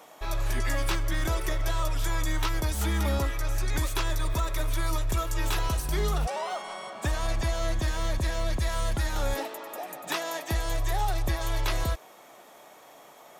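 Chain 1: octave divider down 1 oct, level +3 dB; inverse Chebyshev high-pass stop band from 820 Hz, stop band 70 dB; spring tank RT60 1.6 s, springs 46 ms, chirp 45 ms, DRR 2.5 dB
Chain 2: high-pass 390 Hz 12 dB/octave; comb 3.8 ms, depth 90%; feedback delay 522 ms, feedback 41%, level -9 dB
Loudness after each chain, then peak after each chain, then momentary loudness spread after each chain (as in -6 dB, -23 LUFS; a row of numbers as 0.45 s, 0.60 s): -39.5 LUFS, -31.0 LUFS; -21.0 dBFS, -14.0 dBFS; 9 LU, 6 LU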